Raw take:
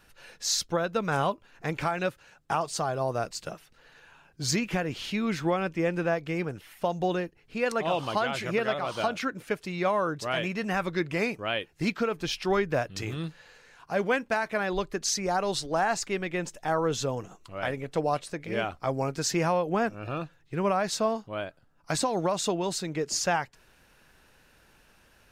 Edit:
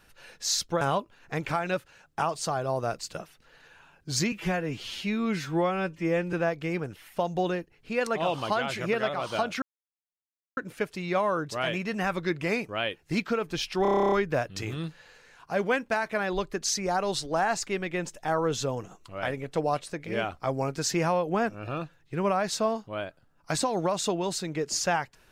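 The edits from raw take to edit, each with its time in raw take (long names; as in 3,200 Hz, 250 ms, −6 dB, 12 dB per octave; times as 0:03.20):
0:00.81–0:01.13: remove
0:04.64–0:05.98: time-stretch 1.5×
0:09.27: splice in silence 0.95 s
0:12.52: stutter 0.03 s, 11 plays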